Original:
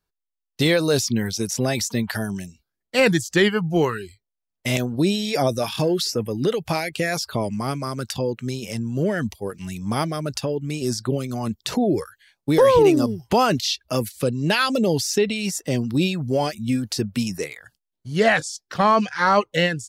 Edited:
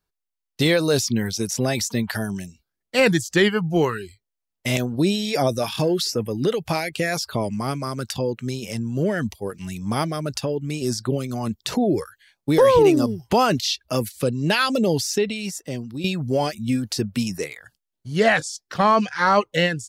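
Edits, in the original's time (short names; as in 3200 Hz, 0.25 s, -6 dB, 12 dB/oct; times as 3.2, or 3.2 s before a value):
14.93–16.04 fade out, to -12 dB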